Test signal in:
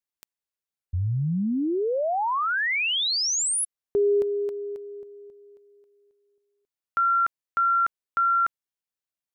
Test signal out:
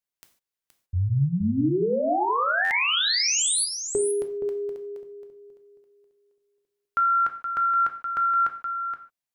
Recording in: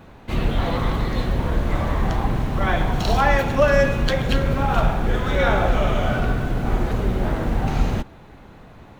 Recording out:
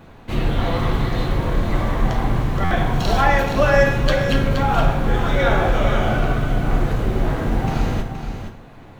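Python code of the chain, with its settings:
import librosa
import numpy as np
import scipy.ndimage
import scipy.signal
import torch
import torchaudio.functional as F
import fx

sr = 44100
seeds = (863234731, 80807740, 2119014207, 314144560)

y = x + 10.0 ** (-8.5 / 20.0) * np.pad(x, (int(472 * sr / 1000.0), 0))[:len(x)]
y = fx.rev_gated(y, sr, seeds[0], gate_ms=170, shape='falling', drr_db=5.5)
y = fx.buffer_glitch(y, sr, at_s=(2.64,), block=512, repeats=5)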